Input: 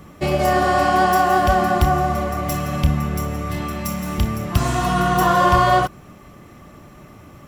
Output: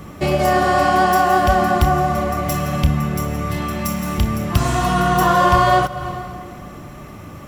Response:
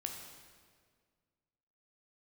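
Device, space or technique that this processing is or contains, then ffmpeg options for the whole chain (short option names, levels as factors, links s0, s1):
ducked reverb: -filter_complex "[0:a]asplit=3[s0][s1][s2];[1:a]atrim=start_sample=2205[s3];[s1][s3]afir=irnorm=-1:irlink=0[s4];[s2]apad=whole_len=329611[s5];[s4][s5]sidechaincompress=threshold=0.0224:ratio=4:attack=16:release=188,volume=1.41[s6];[s0][s6]amix=inputs=2:normalize=0"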